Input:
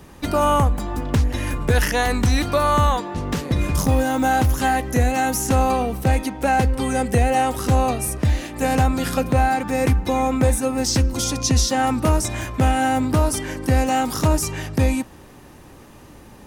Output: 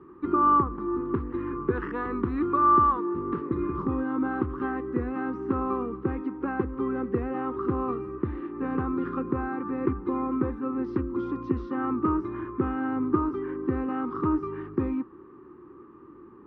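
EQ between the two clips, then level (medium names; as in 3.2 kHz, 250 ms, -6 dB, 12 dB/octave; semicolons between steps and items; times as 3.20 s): two resonant band-passes 650 Hz, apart 1.7 oct; distance through air 370 m; tilt EQ -2 dB/octave; +4.5 dB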